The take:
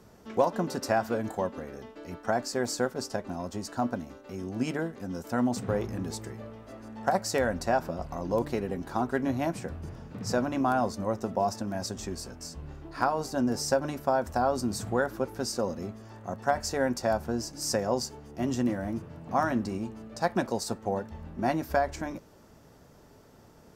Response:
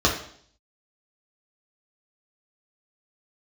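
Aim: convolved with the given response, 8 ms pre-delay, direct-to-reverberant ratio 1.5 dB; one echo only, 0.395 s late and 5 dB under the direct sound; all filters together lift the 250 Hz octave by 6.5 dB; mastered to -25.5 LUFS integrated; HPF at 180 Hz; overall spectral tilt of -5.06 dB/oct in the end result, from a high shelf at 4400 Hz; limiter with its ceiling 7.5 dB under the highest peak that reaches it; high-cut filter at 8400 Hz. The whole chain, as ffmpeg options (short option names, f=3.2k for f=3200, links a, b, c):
-filter_complex "[0:a]highpass=180,lowpass=8.4k,equalizer=f=250:t=o:g=8.5,highshelf=f=4.4k:g=6.5,alimiter=limit=-16dB:level=0:latency=1,aecho=1:1:395:0.562,asplit=2[a][b];[1:a]atrim=start_sample=2205,adelay=8[c];[b][c]afir=irnorm=-1:irlink=0,volume=-18.5dB[d];[a][d]amix=inputs=2:normalize=0,volume=-1dB"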